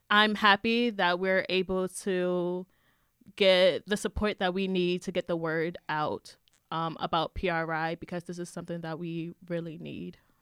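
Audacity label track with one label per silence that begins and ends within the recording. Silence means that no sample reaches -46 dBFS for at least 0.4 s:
2.630000	3.270000	silence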